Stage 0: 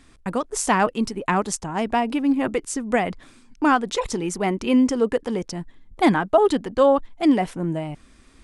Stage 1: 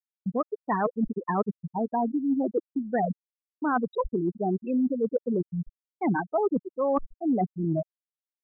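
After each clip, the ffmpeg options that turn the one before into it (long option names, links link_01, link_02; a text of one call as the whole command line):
ffmpeg -i in.wav -af "afftfilt=real='re*gte(hypot(re,im),0.282)':imag='im*gte(hypot(re,im),0.282)':win_size=1024:overlap=0.75,agate=range=-33dB:threshold=-41dB:ratio=3:detection=peak,areverse,acompressor=threshold=-28dB:ratio=6,areverse,volume=4.5dB" out.wav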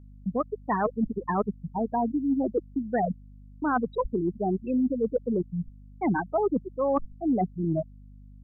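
ffmpeg -i in.wav -af "aeval=exprs='val(0)+0.00447*(sin(2*PI*50*n/s)+sin(2*PI*2*50*n/s)/2+sin(2*PI*3*50*n/s)/3+sin(2*PI*4*50*n/s)/4+sin(2*PI*5*50*n/s)/5)':channel_layout=same" out.wav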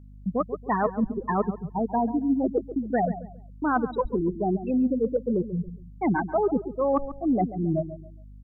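ffmpeg -i in.wav -filter_complex "[0:a]asplit=2[link_01][link_02];[link_02]adelay=138,lowpass=frequency=1100:poles=1,volume=-12dB,asplit=2[link_03][link_04];[link_04]adelay=138,lowpass=frequency=1100:poles=1,volume=0.33,asplit=2[link_05][link_06];[link_06]adelay=138,lowpass=frequency=1100:poles=1,volume=0.33[link_07];[link_01][link_03][link_05][link_07]amix=inputs=4:normalize=0,volume=1.5dB" out.wav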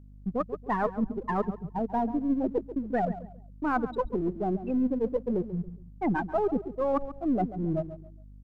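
ffmpeg -i in.wav -af "aeval=exprs='if(lt(val(0),0),0.708*val(0),val(0))':channel_layout=same,volume=-2dB" out.wav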